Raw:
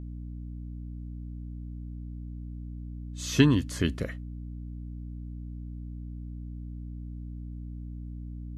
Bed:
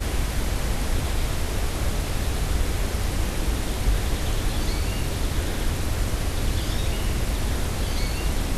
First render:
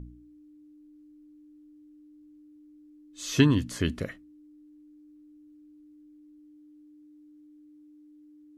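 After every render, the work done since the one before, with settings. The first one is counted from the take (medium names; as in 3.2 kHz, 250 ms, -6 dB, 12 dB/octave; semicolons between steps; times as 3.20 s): de-hum 60 Hz, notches 4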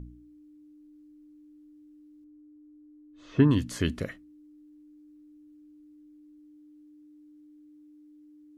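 2.24–3.51 s: low-pass 1.3 kHz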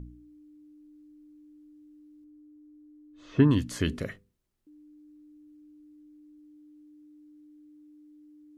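3.84–4.67 s: hum notches 50/100/150/200/250/300/350/400/450/500 Hz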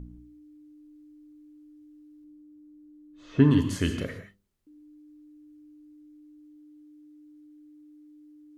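gated-style reverb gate 200 ms flat, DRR 5.5 dB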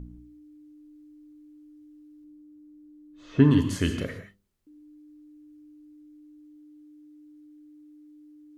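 trim +1 dB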